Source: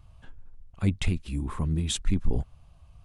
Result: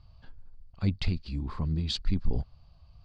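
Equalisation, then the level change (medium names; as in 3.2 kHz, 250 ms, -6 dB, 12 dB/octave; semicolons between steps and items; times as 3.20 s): resonant low-pass 4.6 kHz, resonance Q 13; peaking EQ 340 Hz -3 dB 0.77 oct; treble shelf 2.3 kHz -10.5 dB; -2.0 dB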